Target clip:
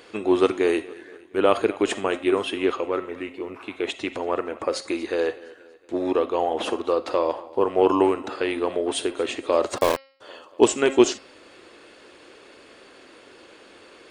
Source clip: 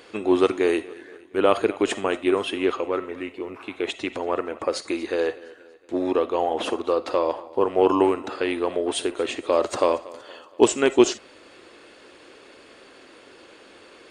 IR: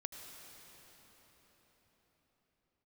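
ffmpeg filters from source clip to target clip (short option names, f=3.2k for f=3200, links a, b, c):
-filter_complex "[0:a]asplit=3[a][b][c];[a]afade=t=out:st=9.77:d=0.02[d];[b]aeval=exprs='val(0)*gte(abs(val(0)),0.0944)':c=same,afade=t=in:st=9.77:d=0.02,afade=t=out:st=10.2:d=0.02[e];[c]afade=t=in:st=10.2:d=0.02[f];[d][e][f]amix=inputs=3:normalize=0,bandreject=f=269.8:t=h:w=4,bandreject=f=539.6:t=h:w=4,bandreject=f=809.4:t=h:w=4,bandreject=f=1.0792k:t=h:w=4,bandreject=f=1.349k:t=h:w=4,bandreject=f=1.6188k:t=h:w=4,bandreject=f=1.8886k:t=h:w=4,bandreject=f=2.1584k:t=h:w=4,bandreject=f=2.4282k:t=h:w=4,bandreject=f=2.698k:t=h:w=4,bandreject=f=2.9678k:t=h:w=4,bandreject=f=3.2376k:t=h:w=4,bandreject=f=3.5074k:t=h:w=4,bandreject=f=3.7772k:t=h:w=4,bandreject=f=4.047k:t=h:w=4,bandreject=f=4.3168k:t=h:w=4,bandreject=f=4.5866k:t=h:w=4,bandreject=f=4.8564k:t=h:w=4,bandreject=f=5.1262k:t=h:w=4,bandreject=f=5.396k:t=h:w=4"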